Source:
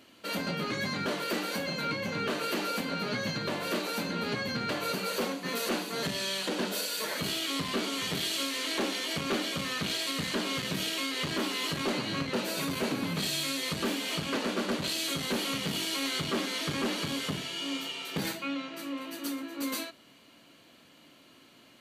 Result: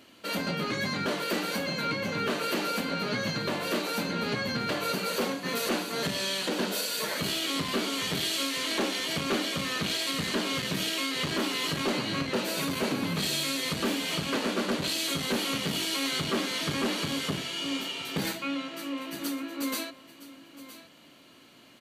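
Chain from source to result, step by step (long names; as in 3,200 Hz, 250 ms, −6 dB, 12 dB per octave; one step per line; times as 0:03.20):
single-tap delay 965 ms −15.5 dB
level +2 dB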